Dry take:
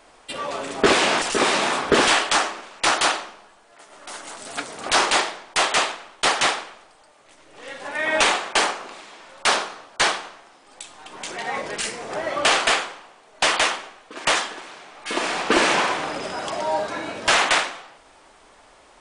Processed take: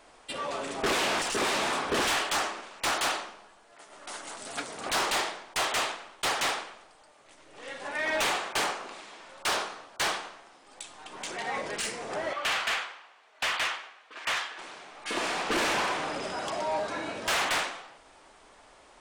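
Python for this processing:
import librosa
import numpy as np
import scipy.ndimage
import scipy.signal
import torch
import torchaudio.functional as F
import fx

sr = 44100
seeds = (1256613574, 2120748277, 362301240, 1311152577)

y = fx.bandpass_q(x, sr, hz=2100.0, q=0.72, at=(12.33, 14.59))
y = 10.0 ** (-19.5 / 20.0) * np.tanh(y / 10.0 ** (-19.5 / 20.0))
y = y * librosa.db_to_amplitude(-4.0)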